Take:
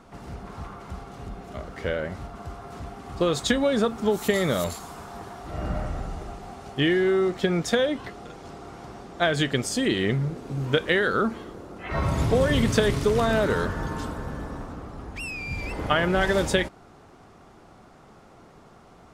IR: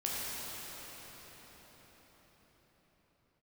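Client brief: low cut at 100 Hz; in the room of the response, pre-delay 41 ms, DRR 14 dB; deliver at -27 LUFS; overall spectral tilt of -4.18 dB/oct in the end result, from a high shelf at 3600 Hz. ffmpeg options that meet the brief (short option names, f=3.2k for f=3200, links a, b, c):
-filter_complex "[0:a]highpass=100,highshelf=f=3.6k:g=6.5,asplit=2[a][b];[1:a]atrim=start_sample=2205,adelay=41[c];[b][c]afir=irnorm=-1:irlink=0,volume=-20dB[d];[a][d]amix=inputs=2:normalize=0,volume=-2.5dB"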